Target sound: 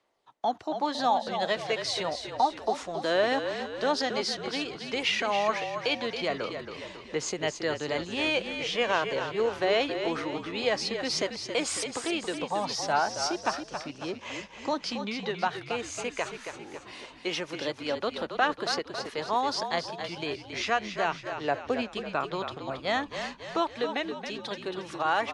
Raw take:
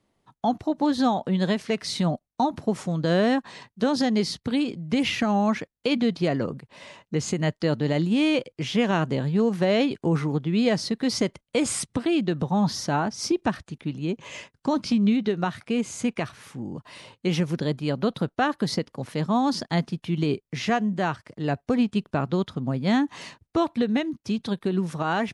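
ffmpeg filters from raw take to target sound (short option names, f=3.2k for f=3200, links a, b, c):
-filter_complex "[0:a]equalizer=f=200:w=1.5:g=-2.5,aphaser=in_gain=1:out_gain=1:delay=3.7:decay=0.28:speed=0.14:type=triangular,acrossover=split=410 8000:gain=0.1 1 0.141[a][b][c];[a][b][c]amix=inputs=3:normalize=0,asplit=7[d][e][f][g][h][i][j];[e]adelay=274,afreqshift=-42,volume=-8dB[k];[f]adelay=548,afreqshift=-84,volume=-13.8dB[l];[g]adelay=822,afreqshift=-126,volume=-19.7dB[m];[h]adelay=1096,afreqshift=-168,volume=-25.5dB[n];[i]adelay=1370,afreqshift=-210,volume=-31.4dB[o];[j]adelay=1644,afreqshift=-252,volume=-37.2dB[p];[d][k][l][m][n][o][p]amix=inputs=7:normalize=0"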